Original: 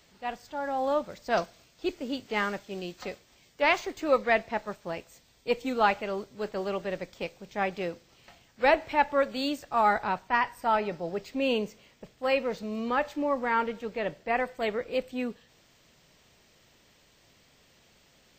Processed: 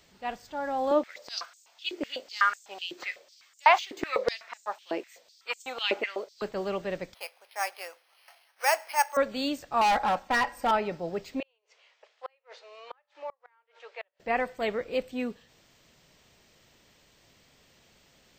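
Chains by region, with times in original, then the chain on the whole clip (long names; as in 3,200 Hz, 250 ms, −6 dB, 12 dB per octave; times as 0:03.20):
0:00.91–0:06.42: parametric band 11,000 Hz −4 dB 1 octave + high-pass on a step sequencer 8 Hz 350–7,300 Hz
0:07.14–0:09.17: high-pass filter 700 Hz 24 dB per octave + bad sample-rate conversion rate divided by 6×, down filtered, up hold
0:09.81–0:10.71: parametric band 670 Hz +6 dB 1.4 octaves + comb filter 3.7 ms, depth 77% + hard clipping −21 dBFS
0:11.40–0:14.20: Bessel high-pass filter 880 Hz, order 8 + gate with flip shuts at −26 dBFS, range −38 dB + high-frequency loss of the air 130 metres
whole clip: no processing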